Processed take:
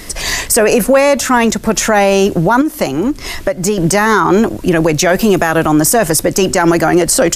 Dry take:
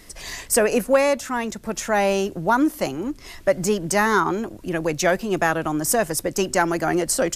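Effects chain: 2.61–3.78 compressor 10:1, threshold -27 dBFS, peak gain reduction 14.5 dB; 5.16–5.66 high shelf 11000 Hz +11 dB; maximiser +17.5 dB; gain -1 dB

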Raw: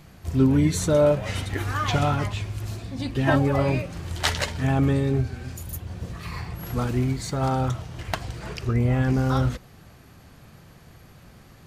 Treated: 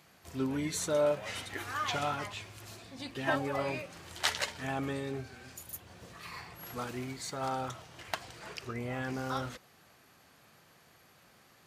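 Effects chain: HPF 660 Hz 6 dB/oct; gain -5.5 dB

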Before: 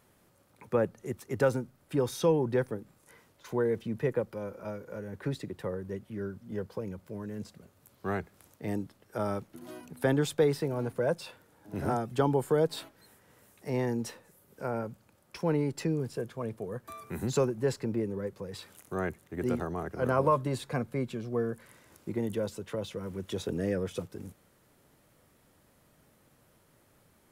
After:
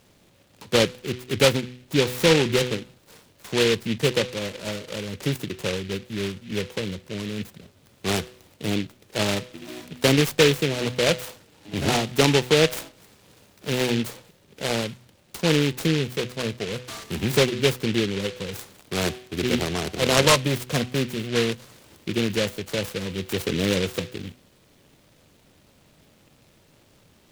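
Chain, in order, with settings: steep low-pass 7900 Hz 72 dB/oct; de-hum 124.9 Hz, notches 12; noise-modulated delay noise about 2600 Hz, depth 0.18 ms; gain +8 dB

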